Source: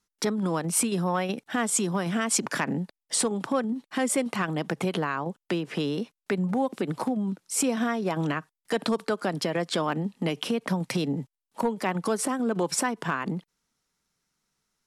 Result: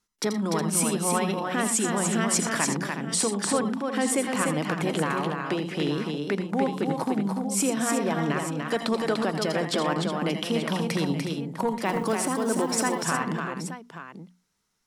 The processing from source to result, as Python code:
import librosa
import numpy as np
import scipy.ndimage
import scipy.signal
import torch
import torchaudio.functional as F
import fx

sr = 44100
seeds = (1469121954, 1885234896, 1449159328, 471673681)

y = fx.hum_notches(x, sr, base_hz=60, count=4)
y = fx.echo_multitap(y, sr, ms=(83, 84, 119, 294, 364, 878), db=(-11.0, -11.5, -18.0, -4.5, -10.5, -12.0))
y = fx.quant_float(y, sr, bits=4, at=(11.85, 13.05))